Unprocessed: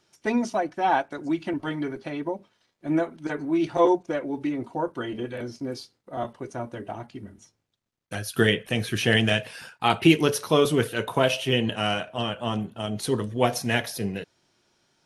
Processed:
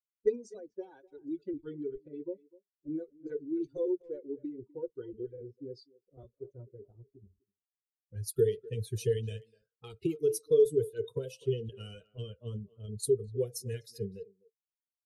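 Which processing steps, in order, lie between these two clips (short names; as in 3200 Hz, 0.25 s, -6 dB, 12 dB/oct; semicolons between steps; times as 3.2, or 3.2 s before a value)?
per-bin expansion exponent 2; compressor 5:1, threshold -36 dBFS, peak gain reduction 20.5 dB; speakerphone echo 0.25 s, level -20 dB; low-pass opened by the level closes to 360 Hz, open at -36.5 dBFS; EQ curve 130 Hz 0 dB, 250 Hz -14 dB, 450 Hz +13 dB, 670 Hz -29 dB, 2400 Hz -18 dB, 9200 Hz +1 dB; gain +6 dB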